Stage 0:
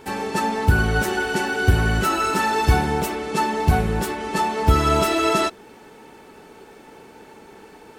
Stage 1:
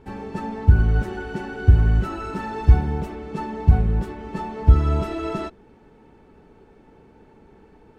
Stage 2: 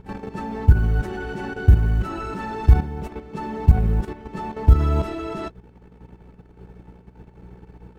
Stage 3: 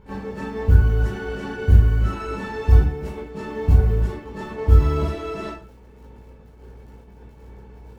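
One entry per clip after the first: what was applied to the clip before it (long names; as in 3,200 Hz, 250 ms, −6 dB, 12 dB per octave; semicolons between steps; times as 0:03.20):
RIAA equalisation playback; level −10.5 dB
hum with harmonics 60 Hz, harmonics 3, −45 dBFS −2 dB per octave; floating-point word with a short mantissa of 6 bits; output level in coarse steps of 11 dB; level +3.5 dB
surface crackle 26 per second −44 dBFS; convolution reverb RT60 0.40 s, pre-delay 7 ms, DRR −8 dB; level −7 dB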